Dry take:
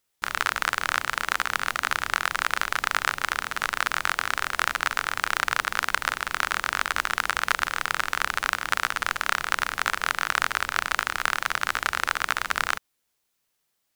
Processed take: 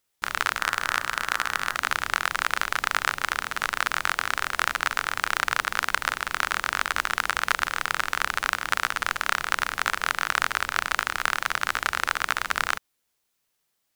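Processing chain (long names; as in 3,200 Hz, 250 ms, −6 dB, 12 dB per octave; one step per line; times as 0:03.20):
0:00.54–0:01.77: hum removal 57.13 Hz, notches 34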